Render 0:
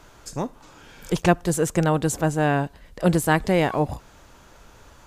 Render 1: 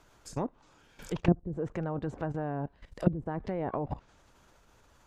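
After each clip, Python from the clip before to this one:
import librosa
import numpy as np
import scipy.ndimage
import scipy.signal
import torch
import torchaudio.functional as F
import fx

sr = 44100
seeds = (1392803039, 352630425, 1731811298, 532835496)

y = fx.level_steps(x, sr, step_db=15)
y = fx.env_lowpass_down(y, sr, base_hz=320.0, full_db=-23.0)
y = fx.hpss(y, sr, part='harmonic', gain_db=-3)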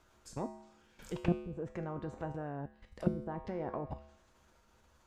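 y = fx.comb_fb(x, sr, f0_hz=72.0, decay_s=0.78, harmonics='odd', damping=0.0, mix_pct=80)
y = y * 10.0 ** (6.0 / 20.0)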